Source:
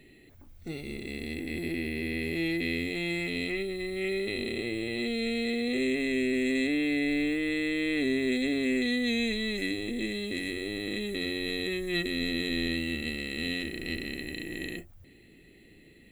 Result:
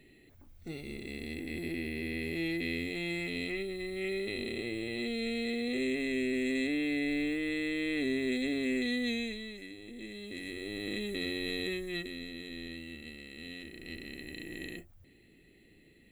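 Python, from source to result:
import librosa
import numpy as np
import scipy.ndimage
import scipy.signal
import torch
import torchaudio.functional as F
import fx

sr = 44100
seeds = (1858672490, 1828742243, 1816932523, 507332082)

y = fx.gain(x, sr, db=fx.line((9.07, -4.0), (9.68, -16.0), (10.88, -3.0), (11.7, -3.0), (12.28, -13.0), (13.47, -13.0), (14.46, -5.5)))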